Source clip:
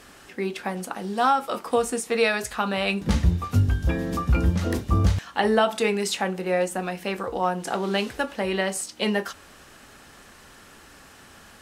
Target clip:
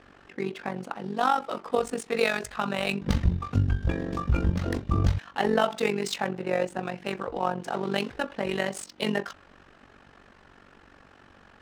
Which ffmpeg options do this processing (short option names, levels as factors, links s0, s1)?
-af "adynamicsmooth=sensitivity=7.5:basefreq=2500,tremolo=f=47:d=0.788"